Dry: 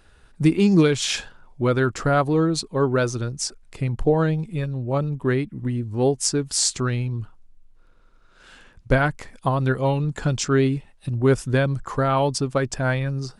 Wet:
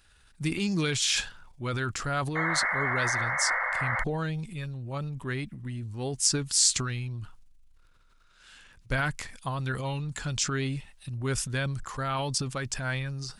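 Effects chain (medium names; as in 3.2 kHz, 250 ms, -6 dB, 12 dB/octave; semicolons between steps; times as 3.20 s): painted sound noise, 2.35–4.04 s, 490–2200 Hz -23 dBFS; amplifier tone stack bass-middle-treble 5-5-5; transient shaper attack -1 dB, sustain +8 dB; trim +5.5 dB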